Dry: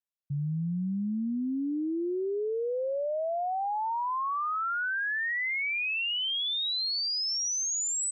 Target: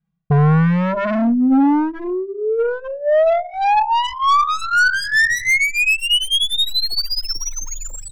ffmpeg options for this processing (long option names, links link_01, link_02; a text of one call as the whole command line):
ffmpeg -i in.wav -filter_complex "[0:a]lowshelf=frequency=260:width_type=q:width=3:gain=13.5,aecho=1:1:6.2:0.81,bandreject=frequency=63.99:width_type=h:width=4,bandreject=frequency=127.98:width_type=h:width=4,bandreject=frequency=191.97:width_type=h:width=4,bandreject=frequency=255.96:width_type=h:width=4,bandreject=frequency=319.95:width_type=h:width=4,bandreject=frequency=383.94:width_type=h:width=4,bandreject=frequency=447.93:width_type=h:width=4,bandreject=frequency=511.92:width_type=h:width=4,bandreject=frequency=575.91:width_type=h:width=4,bandreject=frequency=639.9:width_type=h:width=4,bandreject=frequency=703.89:width_type=h:width=4,bandreject=frequency=767.88:width_type=h:width=4,bandreject=frequency=831.87:width_type=h:width=4,bandreject=frequency=895.86:width_type=h:width=4,bandreject=frequency=959.85:width_type=h:width=4,bandreject=frequency=1023.84:width_type=h:width=4,bandreject=frequency=1087.83:width_type=h:width=4,bandreject=frequency=1151.82:width_type=h:width=4,bandreject=frequency=1215.81:width_type=h:width=4,bandreject=frequency=1279.8:width_type=h:width=4,bandreject=frequency=1343.79:width_type=h:width=4,bandreject=frequency=1407.78:width_type=h:width=4,bandreject=frequency=1471.77:width_type=h:width=4,bandreject=frequency=1535.76:width_type=h:width=4,bandreject=frequency=1599.75:width_type=h:width=4,bandreject=frequency=1663.74:width_type=h:width=4,bandreject=frequency=1727.73:width_type=h:width=4,bandreject=frequency=1791.72:width_type=h:width=4,bandreject=frequency=1855.71:width_type=h:width=4,bandreject=frequency=1919.7:width_type=h:width=4,bandreject=frequency=1983.69:width_type=h:width=4,bandreject=frequency=2047.68:width_type=h:width=4,areverse,acompressor=threshold=-16dB:ratio=6,areverse,aeval=exprs='clip(val(0),-1,0.0266)':channel_layout=same,adynamicsmooth=sensitivity=3:basefreq=1500,aeval=exprs='0.251*(cos(1*acos(clip(val(0)/0.251,-1,1)))-cos(1*PI/2))+0.0794*(cos(2*acos(clip(val(0)/0.251,-1,1)))-cos(2*PI/2))+0.0158*(cos(5*acos(clip(val(0)/0.251,-1,1)))-cos(5*PI/2))+0.00708*(cos(8*acos(clip(val(0)/0.251,-1,1)))-cos(8*PI/2))':channel_layout=same,aeval=exprs='0.211*sin(PI/2*3.16*val(0)/0.211)':channel_layout=same,asplit=2[link_01][link_02];[link_02]adelay=2.1,afreqshift=-0.46[link_03];[link_01][link_03]amix=inputs=2:normalize=1,volume=4.5dB" out.wav